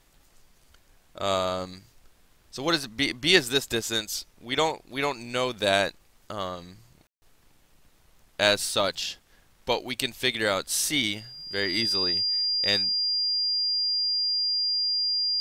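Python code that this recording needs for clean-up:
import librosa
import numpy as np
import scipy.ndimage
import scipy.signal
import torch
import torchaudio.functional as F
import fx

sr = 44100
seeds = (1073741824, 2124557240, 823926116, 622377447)

y = fx.notch(x, sr, hz=4800.0, q=30.0)
y = fx.fix_ambience(y, sr, seeds[0], print_start_s=9.17, print_end_s=9.67, start_s=7.07, end_s=7.22)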